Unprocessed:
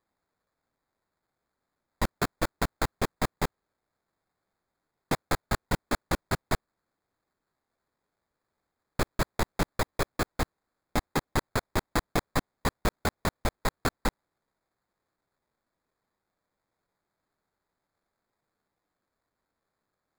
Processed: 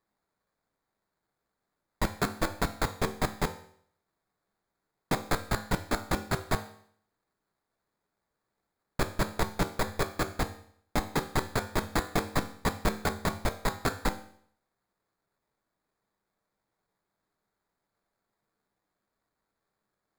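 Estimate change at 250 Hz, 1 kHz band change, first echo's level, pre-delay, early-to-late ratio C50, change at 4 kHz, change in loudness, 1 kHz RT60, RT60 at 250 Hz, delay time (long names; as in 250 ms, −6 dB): 0.0 dB, 0.0 dB, no echo audible, 4 ms, 13.0 dB, −0.5 dB, −0.5 dB, 0.60 s, 0.60 s, no echo audible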